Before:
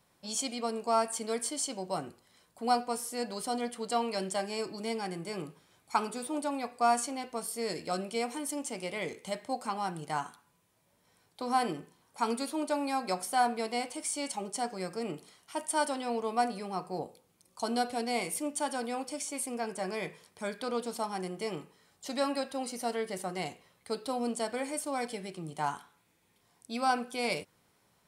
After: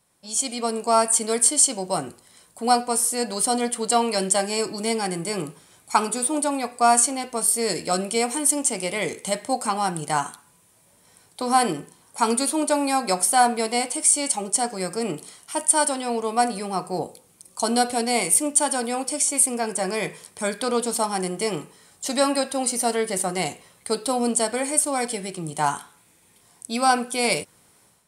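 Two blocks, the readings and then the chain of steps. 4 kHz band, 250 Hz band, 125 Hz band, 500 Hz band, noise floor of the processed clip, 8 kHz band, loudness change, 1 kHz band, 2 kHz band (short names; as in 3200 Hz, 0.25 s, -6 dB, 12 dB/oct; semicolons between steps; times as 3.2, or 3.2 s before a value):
+10.5 dB, +9.0 dB, +9.5 dB, +9.0 dB, -58 dBFS, +17.5 dB, +11.5 dB, +9.0 dB, +9.5 dB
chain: bell 9000 Hz +10.5 dB 0.85 oct; AGC gain up to 11 dB; gain -1 dB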